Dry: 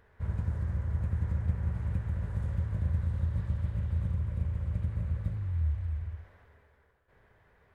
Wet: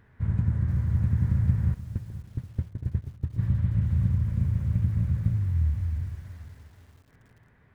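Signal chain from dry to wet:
octave-band graphic EQ 125/250/500/2,000 Hz +10/+9/−5/+3 dB
feedback echo with a band-pass in the loop 69 ms, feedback 83%, band-pass 340 Hz, level −16.5 dB
0:01.74–0:03.39: noise gate −20 dBFS, range −22 dB
feedback echo at a low word length 479 ms, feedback 35%, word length 8 bits, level −14 dB

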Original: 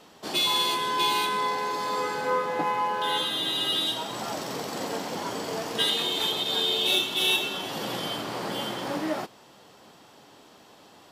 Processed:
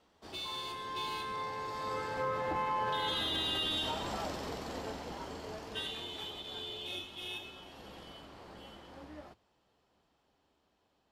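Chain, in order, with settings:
sub-octave generator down 2 octaves, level −3 dB
source passing by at 0:03.32, 11 m/s, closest 4.2 metres
high-shelf EQ 7,300 Hz −10 dB
brickwall limiter −28.5 dBFS, peak gain reduction 10 dB
level +3 dB

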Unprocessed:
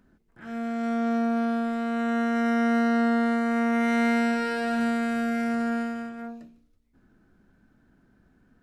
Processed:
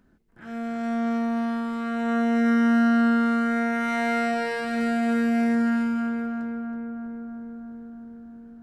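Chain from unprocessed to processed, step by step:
feedback echo with a low-pass in the loop 323 ms, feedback 78%, low-pass 1,700 Hz, level −4 dB

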